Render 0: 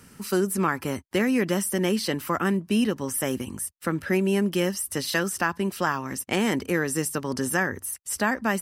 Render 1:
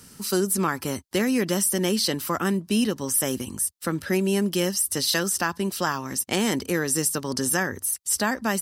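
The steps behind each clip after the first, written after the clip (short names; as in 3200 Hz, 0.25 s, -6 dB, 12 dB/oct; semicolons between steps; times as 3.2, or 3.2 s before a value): resonant high shelf 3100 Hz +6 dB, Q 1.5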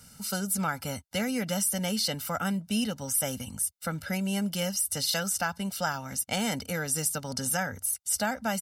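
comb 1.4 ms, depth 88%; gain -6.5 dB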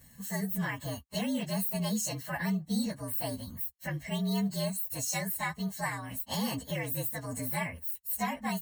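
inharmonic rescaling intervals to 115%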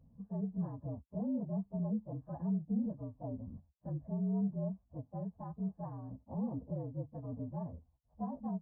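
Gaussian blur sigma 12 samples; gain -2.5 dB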